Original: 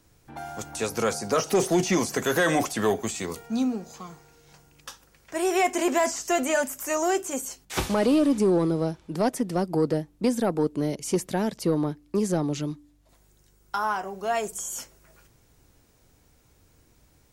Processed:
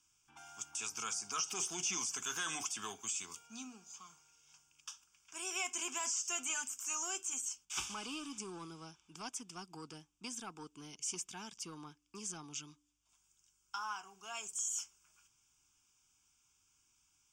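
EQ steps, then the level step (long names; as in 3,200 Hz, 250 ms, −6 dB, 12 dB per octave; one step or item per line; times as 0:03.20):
high-frequency loss of the air 63 metres
first-order pre-emphasis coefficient 0.97
phaser with its sweep stopped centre 2,800 Hz, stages 8
+3.5 dB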